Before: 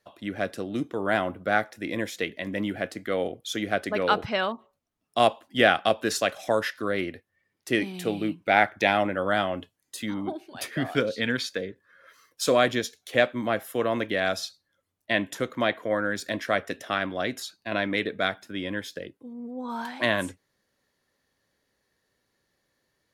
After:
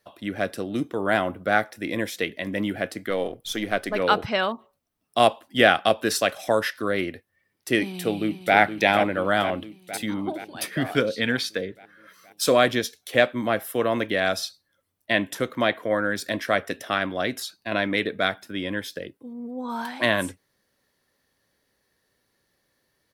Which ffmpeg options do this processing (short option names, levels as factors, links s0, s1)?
-filter_complex "[0:a]asettb=1/sr,asplit=3[s0][s1][s2];[s0]atrim=end=3.104[s3];[s1]atrim=start=3.1:end=4,asetpts=PTS-STARTPTS,afade=t=in:d=0.004:c=qsin,afade=t=out:st=0.896:d=0.004:c=qsin,aeval=exprs='if(lt(val(0),0),0.708*val(0),val(0))':c=same[s4];[s2]atrim=start=3.996[s5];[s3][s4]acrossfade=d=0.004:c1=hsin:c2=qsin[s6];[s6][s5]acrossfade=d=0.004:c1=qsin:c2=hsin,asplit=2[s7][s8];[s8]afade=t=in:st=7.83:d=0.01,afade=t=out:st=8.56:d=0.01,aecho=0:1:470|940|1410|1880|2350|2820|3290|3760|4230:0.375837|0.244294|0.158791|0.103214|0.0670893|0.0436081|0.0283452|0.0184244|0.0119759[s9];[s7][s9]amix=inputs=2:normalize=0,highshelf=f=10000:g=7,bandreject=f=6800:w=11,volume=1.33"